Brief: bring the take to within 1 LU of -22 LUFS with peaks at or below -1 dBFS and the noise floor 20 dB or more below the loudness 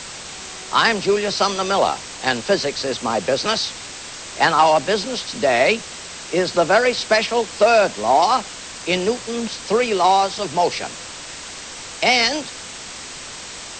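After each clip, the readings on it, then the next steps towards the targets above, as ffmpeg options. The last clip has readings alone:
noise floor -35 dBFS; noise floor target -39 dBFS; loudness -18.5 LUFS; peak -2.5 dBFS; loudness target -22.0 LUFS
-> -af "afftdn=nr=6:nf=-35"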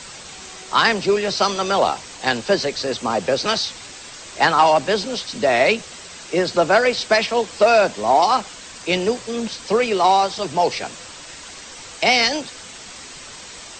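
noise floor -38 dBFS; noise floor target -39 dBFS
-> -af "afftdn=nr=6:nf=-38"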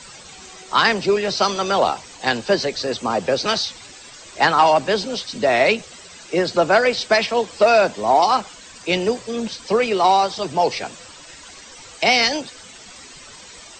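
noise floor -42 dBFS; loudness -19.0 LUFS; peak -2.5 dBFS; loudness target -22.0 LUFS
-> -af "volume=-3dB"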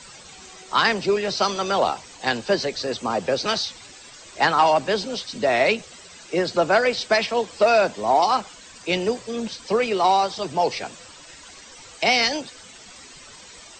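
loudness -22.0 LUFS; peak -5.5 dBFS; noise floor -45 dBFS

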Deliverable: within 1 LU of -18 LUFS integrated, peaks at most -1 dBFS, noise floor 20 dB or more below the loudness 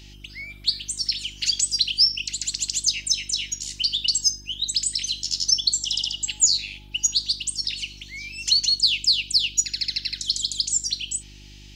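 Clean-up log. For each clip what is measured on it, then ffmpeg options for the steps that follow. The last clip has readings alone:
hum 50 Hz; harmonics up to 350 Hz; hum level -43 dBFS; loudness -21.5 LUFS; peak -7.0 dBFS; loudness target -18.0 LUFS
-> -af "bandreject=f=50:t=h:w=4,bandreject=f=100:t=h:w=4,bandreject=f=150:t=h:w=4,bandreject=f=200:t=h:w=4,bandreject=f=250:t=h:w=4,bandreject=f=300:t=h:w=4,bandreject=f=350:t=h:w=4"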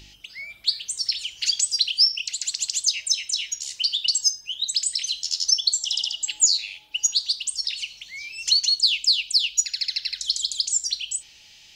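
hum none; loudness -21.5 LUFS; peak -7.0 dBFS; loudness target -18.0 LUFS
-> -af "volume=3.5dB"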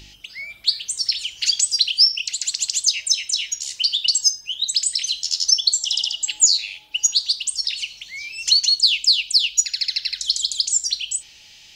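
loudness -18.0 LUFS; peak -3.5 dBFS; noise floor -47 dBFS

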